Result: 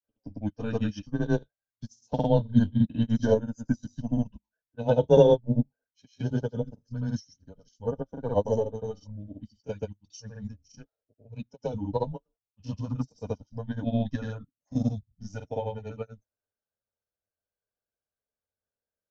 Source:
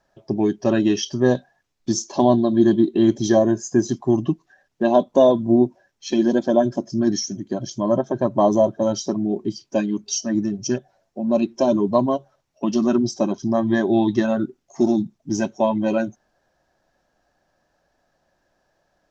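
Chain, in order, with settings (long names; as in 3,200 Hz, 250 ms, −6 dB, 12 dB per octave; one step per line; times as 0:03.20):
frequency shifter −110 Hz
granular cloud 147 ms, grains 16 per second, spray 95 ms, pitch spread up and down by 0 semitones
expander for the loud parts 2.5 to 1, over −31 dBFS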